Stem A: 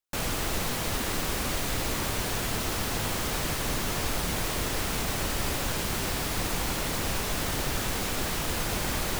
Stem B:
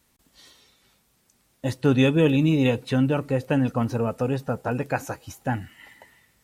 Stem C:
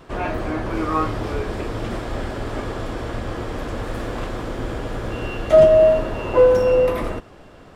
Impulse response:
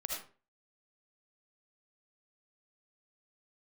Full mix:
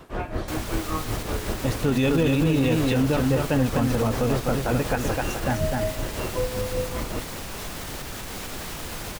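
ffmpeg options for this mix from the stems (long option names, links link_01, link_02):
-filter_complex "[0:a]alimiter=level_in=1.5dB:limit=-24dB:level=0:latency=1:release=255,volume=-1.5dB,adelay=350,volume=1.5dB[link_01];[1:a]volume=1.5dB,asplit=2[link_02][link_03];[link_03]volume=-4.5dB[link_04];[2:a]acrossover=split=200[link_05][link_06];[link_06]acompressor=threshold=-28dB:ratio=6[link_07];[link_05][link_07]amix=inputs=2:normalize=0,tremolo=f=5.3:d=0.74,volume=1dB[link_08];[link_04]aecho=0:1:253:1[link_09];[link_01][link_02][link_08][link_09]amix=inputs=4:normalize=0,alimiter=limit=-13dB:level=0:latency=1:release=34"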